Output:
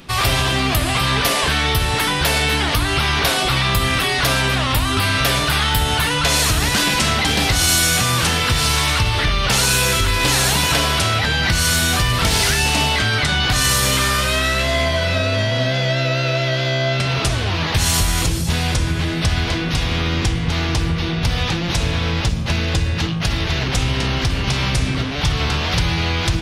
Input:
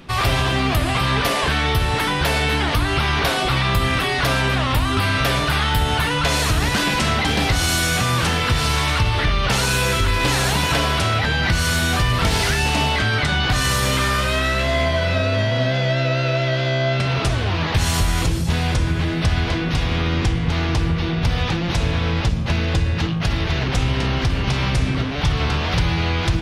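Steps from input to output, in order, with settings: treble shelf 3.7 kHz +9 dB

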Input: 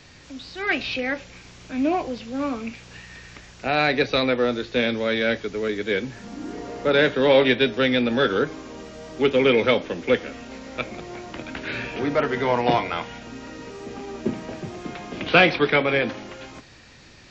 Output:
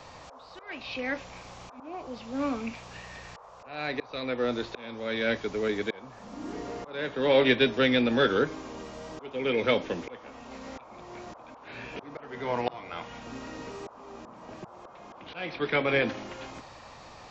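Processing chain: slow attack 667 ms; band noise 470–1200 Hz -47 dBFS; trim -3 dB

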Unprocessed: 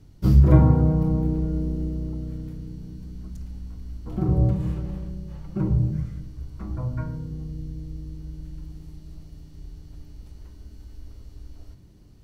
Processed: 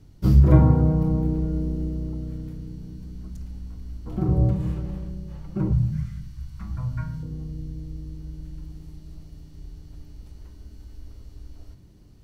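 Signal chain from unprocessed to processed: 5.72–7.23 s: FFT filter 180 Hz 0 dB, 390 Hz -18 dB, 890 Hz -3 dB, 1.7 kHz +3 dB

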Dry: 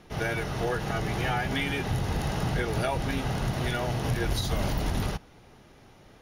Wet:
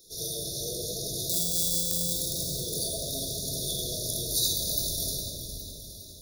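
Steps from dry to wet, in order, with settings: 1.29–2.13 s: sorted samples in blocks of 256 samples; simulated room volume 2700 m³, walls mixed, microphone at 3.9 m; in parallel at +2 dB: peak limiter -16 dBFS, peak gain reduction 9.5 dB; on the sum: brick-wall FIR band-stop 680–3400 Hz; pre-emphasis filter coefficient 0.97; on a send: echo whose repeats swap between lows and highs 205 ms, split 1.7 kHz, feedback 74%, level -7.5 dB; on the sum: trim +3.5 dB

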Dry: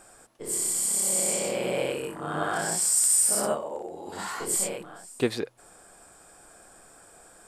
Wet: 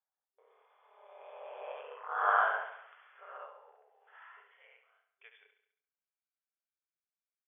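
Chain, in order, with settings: Doppler pass-by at 2.35 s, 20 m/s, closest 3.1 m; gate with hold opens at -58 dBFS; FFT band-pass 390–3500 Hz; band-pass sweep 1 kHz -> 2.3 kHz, 1.58–5.43 s; feedback delay 69 ms, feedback 53%, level -9.5 dB; trim +7.5 dB; MP3 32 kbps 22.05 kHz

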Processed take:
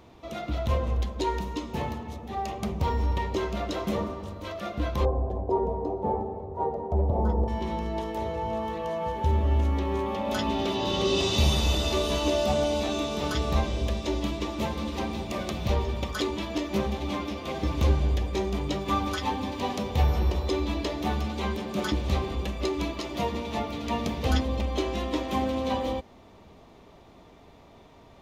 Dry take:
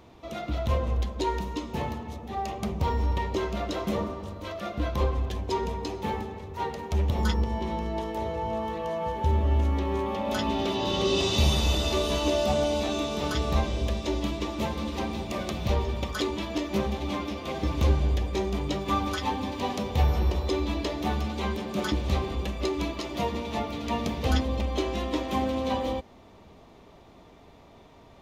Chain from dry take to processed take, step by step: 5.05–7.48 s: FFT filter 230 Hz 0 dB, 710 Hz +9 dB, 1.7 kHz -17 dB, 2.7 kHz -25 dB

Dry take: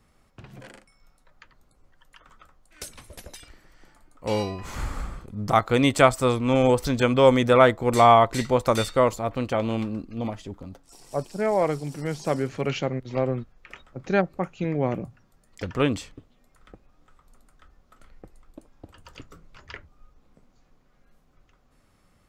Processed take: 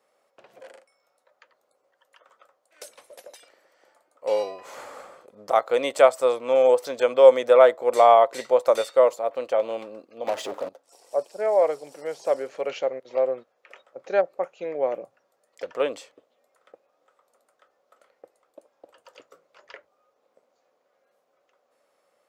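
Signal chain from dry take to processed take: 10.27–10.69 s: waveshaping leveller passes 5; resonant high-pass 540 Hz, resonance Q 3.6; trim -5.5 dB

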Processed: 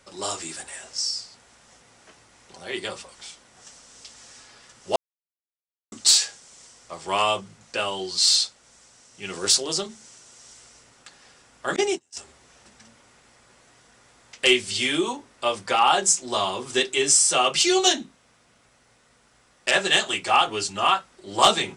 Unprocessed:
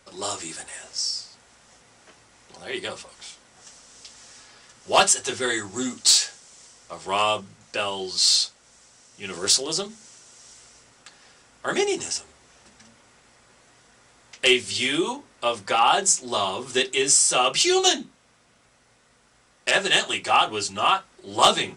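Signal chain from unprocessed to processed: 4.96–5.92 s: mute; 11.76–12.17 s: gate -24 dBFS, range -36 dB

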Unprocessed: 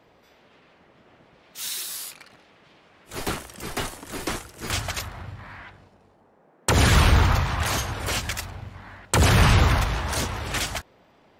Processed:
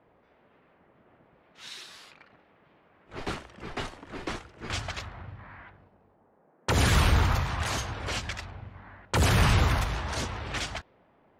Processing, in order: level-controlled noise filter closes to 1.8 kHz, open at -18 dBFS; trim -5 dB

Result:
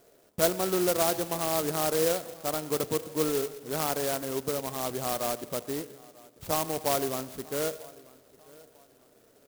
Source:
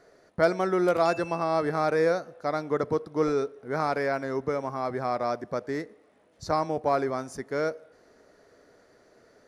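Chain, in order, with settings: feedback delay 943 ms, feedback 33%, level -23 dB; reverberation RT60 1.3 s, pre-delay 84 ms, DRR 16.5 dB; sampling jitter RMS 0.13 ms; trim -2.5 dB

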